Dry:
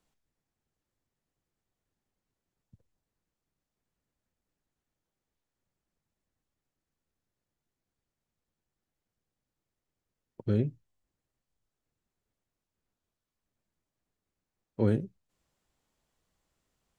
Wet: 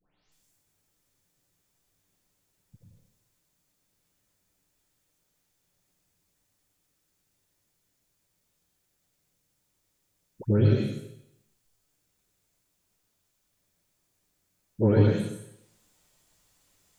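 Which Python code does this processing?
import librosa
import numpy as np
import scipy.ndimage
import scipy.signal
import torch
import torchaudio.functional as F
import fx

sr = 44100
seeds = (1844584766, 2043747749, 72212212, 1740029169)

y = fx.spec_delay(x, sr, highs='late', ms=317)
y = fx.high_shelf(y, sr, hz=3200.0, db=10.5)
y = fx.rev_plate(y, sr, seeds[0], rt60_s=0.79, hf_ratio=1.0, predelay_ms=85, drr_db=-2.0)
y = F.gain(torch.from_numpy(y), 4.5).numpy()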